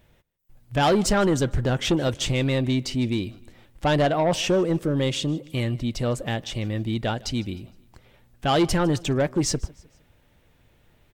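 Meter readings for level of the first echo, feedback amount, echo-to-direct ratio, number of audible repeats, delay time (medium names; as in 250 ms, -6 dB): -23.0 dB, 41%, -22.0 dB, 2, 154 ms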